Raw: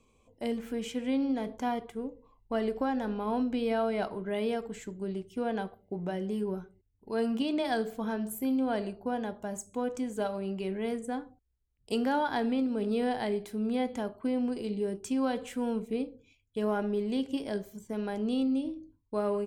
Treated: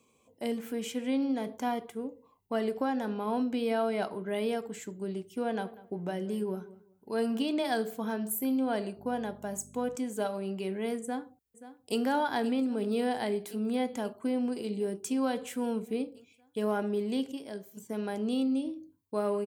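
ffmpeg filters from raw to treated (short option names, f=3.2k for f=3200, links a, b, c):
-filter_complex "[0:a]asettb=1/sr,asplit=3[a][b][c];[a]atrim=end=5.344[d];[b]atrim=start=5.34:end=7.49,asetpts=PTS-STARTPTS,afade=t=in:d=0.004:c=qsin,afade=t=out:st=2.146:d=0.004:c=qsin,asplit=2[e][f];[f]adelay=193,lowpass=f=2k:p=1,volume=-18dB,asplit=2[g][h];[h]adelay=193,lowpass=f=2k:p=1,volume=0.24[i];[e][g][i]amix=inputs=3:normalize=0,atrim=end_sample=94815[j];[c]atrim=start=7.486[k];[d][j]acrossfade=d=0.004:c1=hsin:c2=qsin[l];[l][k]acrossfade=d=0.004:c1=qsin:c2=hsin,asettb=1/sr,asplit=3[m][n][o];[m]atrim=end=8.974[p];[n]atrim=start=8.97:end=9.96,asetpts=PTS-STARTPTS,afade=t=in:d=0.004:c=qsin,afade=t=out:st=0.986:d=0.004:c=qsin,aeval=exprs='val(0)+0.00562*(sin(2*PI*50*n/s)+sin(2*PI*2*50*n/s)/2+sin(2*PI*3*50*n/s)/3+sin(2*PI*4*50*n/s)/4+sin(2*PI*5*50*n/s)/5)':c=same[q];[o]atrim=start=9.956[r];[p][q]acrossfade=d=0.004:c1=hsin:c2=qsin[s];[s][r]acrossfade=d=0.004:c1=qsin:c2=hsin,asplit=2[t][u];[u]afade=t=in:st=11.01:d=0.01,afade=t=out:st=12:d=0.01,aecho=0:1:530|1060|1590|2120|2650|3180|3710|4240|4770|5300|5830|6360:0.188365|0.150692|0.120554|0.0964428|0.0771543|0.0617234|0.0493787|0.039503|0.0316024|0.0252819|0.0202255|0.0161804[v];[t][v]amix=inputs=2:normalize=0,asplit=3[w][x][y];[w]atrim=end=17.322[z];[x]atrim=start=17.318:end=17.772,asetpts=PTS-STARTPTS,volume=-6.5dB[aa];[y]atrim=start=17.768[ab];[z][aa]acrossfade=d=0.004:c1=hsin:c2=hsin[ac];[ac][ab]acrossfade=d=0.004:c1=hsin:c2=hsin,highpass=140,highshelf=f=9.5k:g=11.5"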